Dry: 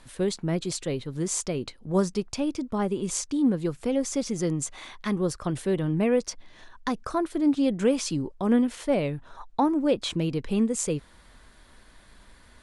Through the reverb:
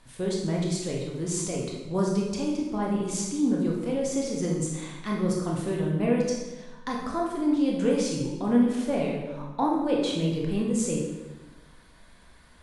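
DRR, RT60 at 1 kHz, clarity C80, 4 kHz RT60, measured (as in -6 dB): -2.0 dB, 1.1 s, 4.5 dB, 0.90 s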